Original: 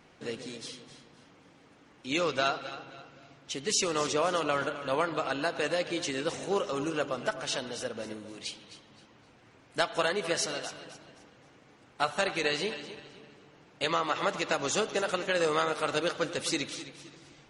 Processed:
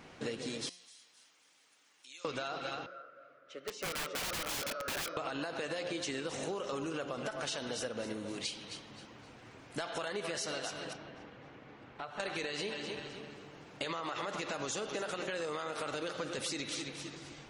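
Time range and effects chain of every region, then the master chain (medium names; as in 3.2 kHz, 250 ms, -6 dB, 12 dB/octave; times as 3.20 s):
0.69–2.25 s: differentiator + compression 3:1, threshold -59 dBFS
2.86–5.17 s: two resonant band-passes 870 Hz, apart 1.2 oct + integer overflow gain 34 dB
10.93–12.20 s: low-pass 3.1 kHz + compression 3:1, threshold -49 dBFS
whole clip: de-hum 177.2 Hz, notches 36; peak limiter -24.5 dBFS; compression, threshold -40 dBFS; trim +5 dB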